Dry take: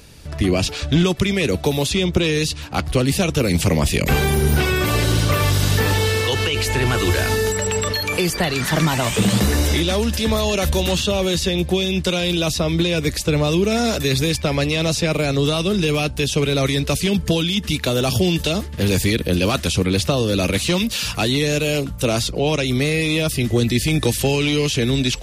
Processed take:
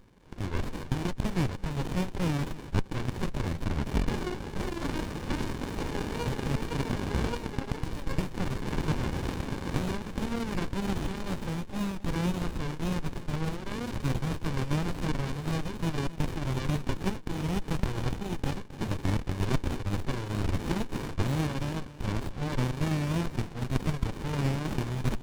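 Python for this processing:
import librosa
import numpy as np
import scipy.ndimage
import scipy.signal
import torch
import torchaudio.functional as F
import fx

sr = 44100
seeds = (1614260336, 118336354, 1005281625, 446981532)

y = scipy.signal.sosfilt(scipy.signal.ellip(3, 1.0, 40, [630.0, 4000.0], 'bandpass', fs=sr, output='sos'), x)
y = fx.peak_eq(y, sr, hz=2300.0, db=3.0, octaves=0.27)
y = fx.wow_flutter(y, sr, seeds[0], rate_hz=2.1, depth_cents=140.0)
y = y + 10.0 ** (-15.0 / 20.0) * np.pad(y, (int(265 * sr / 1000.0), 0))[:len(y)]
y = fx.running_max(y, sr, window=65)
y = y * librosa.db_to_amplitude(-1.5)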